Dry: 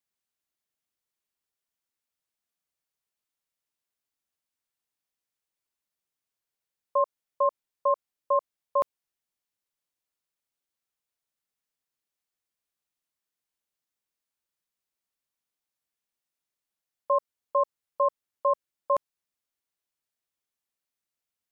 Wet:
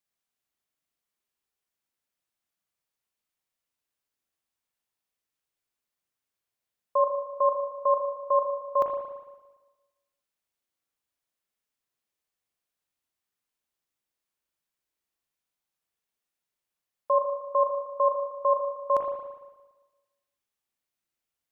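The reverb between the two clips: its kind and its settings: spring tank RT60 1.2 s, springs 37/57 ms, chirp 75 ms, DRR 2.5 dB

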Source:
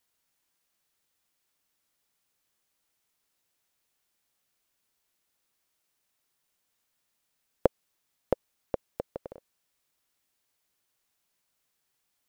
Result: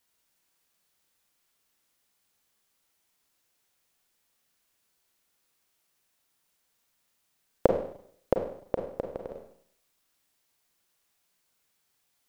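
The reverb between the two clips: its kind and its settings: Schroeder reverb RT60 0.64 s, combs from 33 ms, DRR 3.5 dB; trim +2 dB

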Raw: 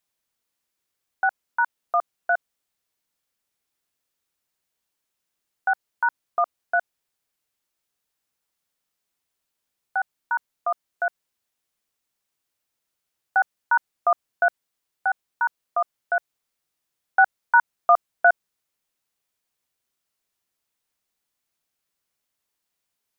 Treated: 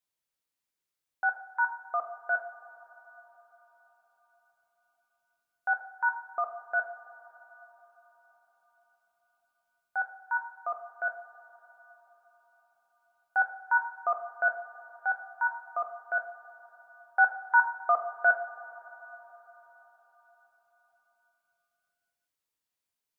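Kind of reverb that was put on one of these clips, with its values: two-slope reverb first 0.46 s, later 4.9 s, from -18 dB, DRR 3.5 dB; trim -9 dB

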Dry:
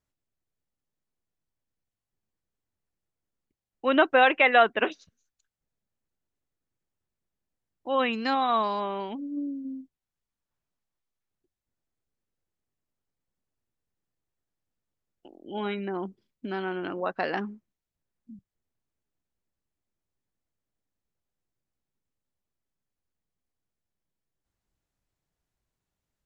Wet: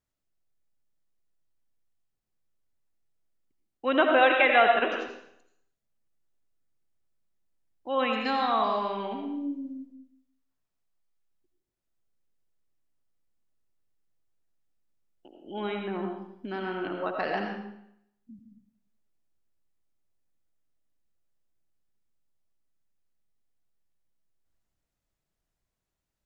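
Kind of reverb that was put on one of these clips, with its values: algorithmic reverb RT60 0.74 s, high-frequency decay 0.95×, pre-delay 45 ms, DRR 2 dB; trim -2.5 dB

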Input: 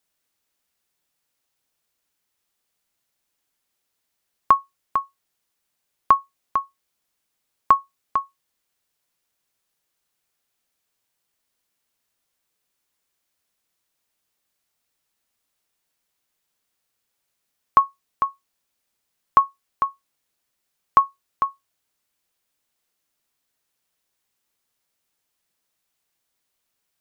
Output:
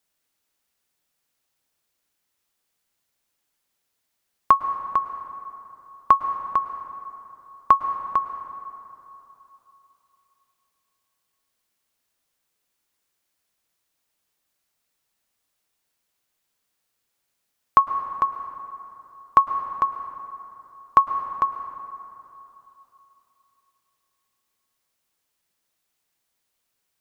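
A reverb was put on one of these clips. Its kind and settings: plate-style reverb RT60 3.2 s, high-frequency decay 0.5×, pre-delay 95 ms, DRR 9 dB

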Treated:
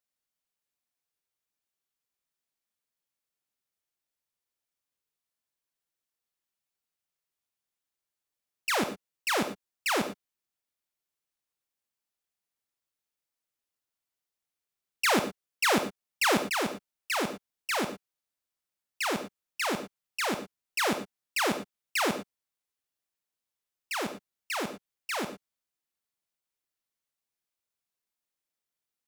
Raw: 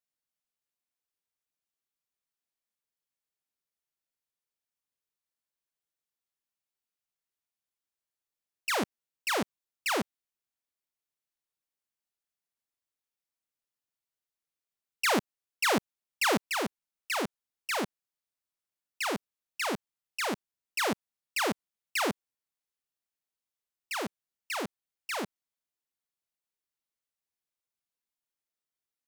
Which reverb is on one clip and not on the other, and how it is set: gated-style reverb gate 130 ms rising, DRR 9 dB; trim +1.5 dB

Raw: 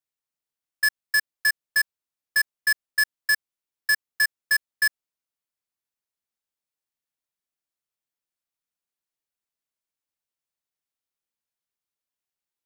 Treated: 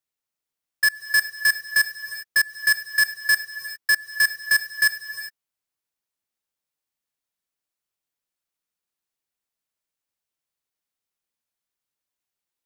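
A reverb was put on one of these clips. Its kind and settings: gated-style reverb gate 430 ms rising, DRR 10 dB; trim +2.5 dB

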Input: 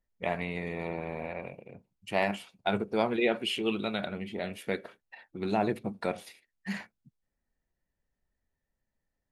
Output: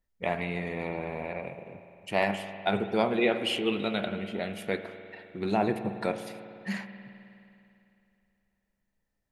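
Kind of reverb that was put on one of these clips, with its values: spring tank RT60 2.8 s, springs 51 ms, chirp 75 ms, DRR 9 dB; trim +1.5 dB

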